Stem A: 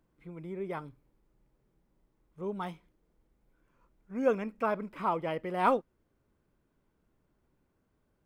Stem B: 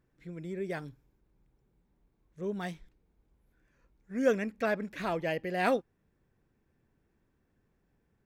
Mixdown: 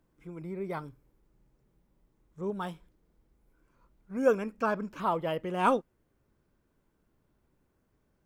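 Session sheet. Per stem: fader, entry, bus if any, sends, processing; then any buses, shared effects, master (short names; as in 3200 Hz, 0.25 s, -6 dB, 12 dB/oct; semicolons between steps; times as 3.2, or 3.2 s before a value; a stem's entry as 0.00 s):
+1.0 dB, 0.00 s, no send, dry
-8.0 dB, 0.00 s, no send, tone controls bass +1 dB, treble +9 dB; step phaser 2.4 Hz 680–4500 Hz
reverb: off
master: dry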